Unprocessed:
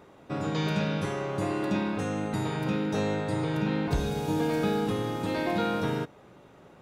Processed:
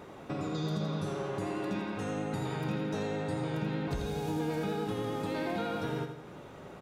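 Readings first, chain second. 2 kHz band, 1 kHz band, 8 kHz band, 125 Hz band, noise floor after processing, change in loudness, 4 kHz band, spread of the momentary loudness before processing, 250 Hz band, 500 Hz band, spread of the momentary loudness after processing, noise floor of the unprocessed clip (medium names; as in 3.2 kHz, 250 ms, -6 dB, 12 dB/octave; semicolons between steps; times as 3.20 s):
-6.0 dB, -5.0 dB, -5.0 dB, -4.5 dB, -48 dBFS, -5.5 dB, -6.0 dB, 4 LU, -5.5 dB, -4.5 dB, 5 LU, -54 dBFS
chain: spectral replace 0.35–1.31 s, 750–3200 Hz; compression 2.5:1, threshold -43 dBFS, peak gain reduction 14 dB; vibrato 9.6 Hz 29 cents; on a send: feedback delay 84 ms, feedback 53%, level -8.5 dB; on the sum: trim +5 dB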